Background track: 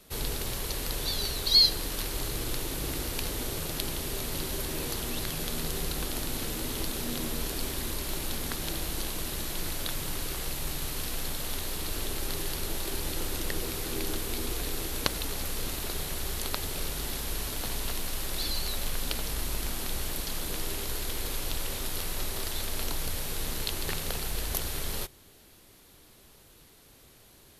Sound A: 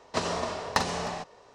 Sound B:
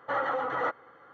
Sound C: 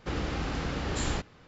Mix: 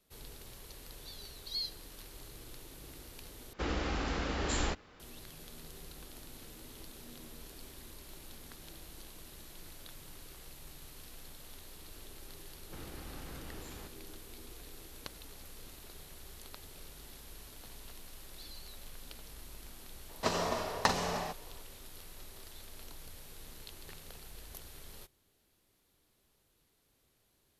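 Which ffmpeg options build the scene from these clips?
-filter_complex "[3:a]asplit=2[a][b];[0:a]volume=-17.5dB[c];[a]equalizer=f=130:t=o:w=0.86:g=-10.5[d];[b]alimiter=level_in=1.5dB:limit=-24dB:level=0:latency=1:release=71,volume=-1.5dB[e];[c]asplit=2[f][g];[f]atrim=end=3.534[h];[d]atrim=end=1.47,asetpts=PTS-STARTPTS,volume=-1dB[i];[g]atrim=start=4.996[j];[e]atrim=end=1.47,asetpts=PTS-STARTPTS,volume=-14dB,afade=t=in:d=0.004:c=hsin,afade=t=out:st=1.466:d=0.004:c=hsin,adelay=12660[k];[1:a]atrim=end=1.54,asetpts=PTS-STARTPTS,volume=-3dB,afade=t=in:d=0.004:c=hsin,afade=t=out:st=1.536:d=0.004:c=hsin,adelay=20090[l];[h][i]acrossfade=d=0.004:c1=hsin:c2=hsin[m];[m][j]acrossfade=d=0.004:c1=hsin:c2=hsin[n];[n][k][l]amix=inputs=3:normalize=0"

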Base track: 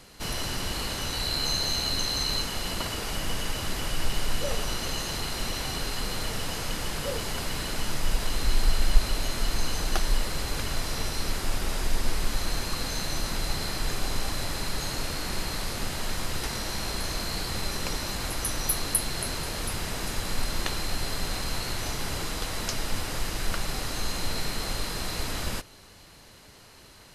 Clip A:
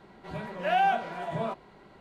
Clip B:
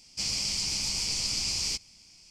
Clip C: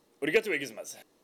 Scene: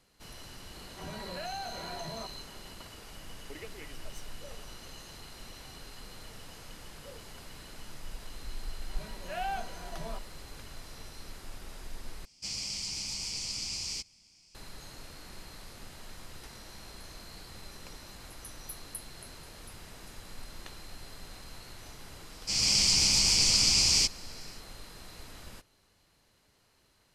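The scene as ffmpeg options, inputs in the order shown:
-filter_complex "[1:a]asplit=2[a][b];[2:a]asplit=2[c][d];[0:a]volume=-16.5dB[e];[a]acompressor=threshold=-35dB:ratio=6:attack=3.2:release=140:knee=1:detection=peak[f];[3:a]acompressor=threshold=-39dB:ratio=3:attack=25:release=271:knee=1:detection=rms[g];[b]aemphasis=mode=production:type=50fm[h];[d]dynaudnorm=f=200:g=3:m=8dB[i];[e]asplit=2[j][k];[j]atrim=end=12.254[l];[c]atrim=end=2.3,asetpts=PTS-STARTPTS,volume=-6.5dB[m];[k]atrim=start=14.546[n];[f]atrim=end=2,asetpts=PTS-STARTPTS,volume=-2.5dB,afade=t=in:d=0.004:c=hsin,afade=t=out:st=1.996:d=0.004:c=hsin,adelay=730[o];[g]atrim=end=1.23,asetpts=PTS-STARTPTS,volume=-9dB,afade=t=in:d=0.004:c=hsin,afade=t=out:st=1.226:d=0.004:c=hsin,adelay=3280[p];[h]atrim=end=2,asetpts=PTS-STARTPTS,volume=-11dB,afade=t=in:d=0.004:c=hsin,afade=t=out:st=1.996:d=0.004:c=hsin,adelay=8650[q];[i]atrim=end=2.3,asetpts=PTS-STARTPTS,volume=-2dB,afade=t=in:d=0.004:c=hsin,afade=t=out:st=2.296:d=0.004:c=hsin,adelay=22300[r];[l][m]acrossfade=d=0.004:c1=hsin:c2=hsin[s];[s][n]acrossfade=d=0.004:c1=hsin:c2=hsin[t];[t][o][p][q][r]amix=inputs=5:normalize=0"

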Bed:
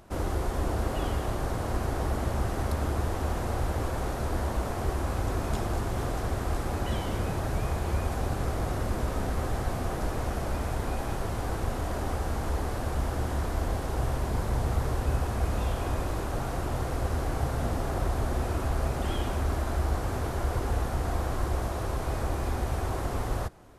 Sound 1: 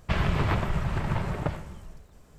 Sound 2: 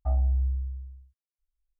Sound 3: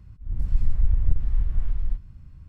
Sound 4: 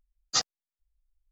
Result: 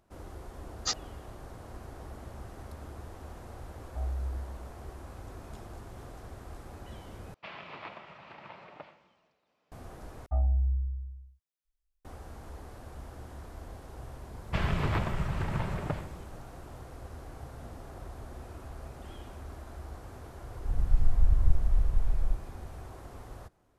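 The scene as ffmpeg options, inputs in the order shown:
-filter_complex "[2:a]asplit=2[a][b];[1:a]asplit=2[c][d];[0:a]volume=-15.5dB[e];[c]highpass=390,equalizer=f=400:t=q:w=4:g=-6,equalizer=f=1.6k:t=q:w=4:g=-4,equalizer=f=2.5k:t=q:w=4:g=4,lowpass=f=4.8k:w=0.5412,lowpass=f=4.8k:w=1.3066[f];[e]asplit=3[g][h][i];[g]atrim=end=7.344[j];[f]atrim=end=2.38,asetpts=PTS-STARTPTS,volume=-12.5dB[k];[h]atrim=start=9.716:end=10.264[l];[b]atrim=end=1.79,asetpts=PTS-STARTPTS,volume=-2dB[m];[i]atrim=start=12.046[n];[4:a]atrim=end=1.31,asetpts=PTS-STARTPTS,volume=-5.5dB,afade=t=in:d=0.004:c=hsin,afade=t=out:st=1.306:d=0.004:c=hsin,adelay=520[o];[a]atrim=end=1.79,asetpts=PTS-STARTPTS,volume=-9.5dB,afade=t=in:d=0.004:c=hsin,afade=t=out:st=1.786:d=0.004:c=hsin,adelay=3900[p];[d]atrim=end=2.38,asetpts=PTS-STARTPTS,volume=-4dB,afade=t=in:d=0.004:c=hsin,afade=t=out:st=2.376:d=0.004:c=hsin,adelay=636804S[q];[3:a]atrim=end=2.48,asetpts=PTS-STARTPTS,volume=-2.5dB,afade=t=in:d=0.004:c=hsin,afade=t=out:st=2.476:d=0.004:c=hsin,adelay=20390[r];[j][k]acrossfade=d=0.004:c1=hsin:c2=hsin[s];[s][l]acrossfade=d=0.004:c1=hsin:c2=hsin[t];[t][m]acrossfade=d=0.004:c1=hsin:c2=hsin[u];[u][n]acrossfade=d=0.004:c1=hsin:c2=hsin[v];[v][o][p][q][r]amix=inputs=5:normalize=0"

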